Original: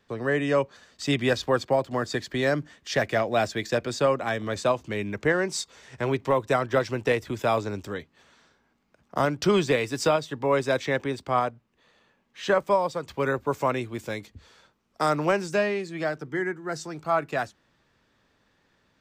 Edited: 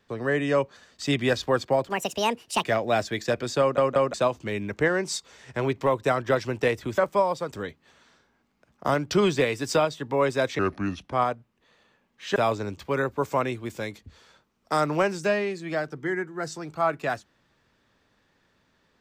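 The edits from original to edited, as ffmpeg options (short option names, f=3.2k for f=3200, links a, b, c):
-filter_complex "[0:a]asplit=12[a][b][c][d][e][f][g][h][i][j][k][l];[a]atrim=end=1.894[m];[b]atrim=start=1.89:end=3.08,asetpts=PTS-STARTPTS,asetrate=70119,aresample=44100[n];[c]atrim=start=3.076:end=4.222[o];[d]atrim=start=4.038:end=4.222[p];[e]atrim=start=4.038:end=4.222[q];[f]atrim=start=4.578:end=7.422[r];[g]atrim=start=12.518:end=13.062[s];[h]atrim=start=7.828:end=10.904[t];[i]atrim=start=10.9:end=11.29,asetpts=PTS-STARTPTS,asetrate=31752,aresample=44100[u];[j]atrim=start=11.286:end=12.522[v];[k]atrim=start=7.418:end=7.832[w];[l]atrim=start=13.058[x];[m][n]acrossfade=d=0.004:c1=hsin:c2=hsin[y];[y][o]acrossfade=d=0.004:c1=hsin:c2=hsin[z];[z][p]acrossfade=d=0.004:c1=hsin:c2=hsin[aa];[aa][q]acrossfade=d=0.004:c1=hsin:c2=hsin[ab];[ab][r]acrossfade=d=0.004:c1=hsin:c2=hsin[ac];[ac][s]acrossfade=d=0.004:c1=hsin:c2=hsin[ad];[ad][t]acrossfade=d=0.004:c1=hsin:c2=hsin[ae];[ae][u]acrossfade=d=0.004:c1=hsin:c2=hsin[af];[af][v]acrossfade=d=0.004:c1=hsin:c2=hsin[ag];[ag][w]acrossfade=d=0.004:c1=hsin:c2=hsin[ah];[ah][x]acrossfade=d=0.004:c1=hsin:c2=hsin"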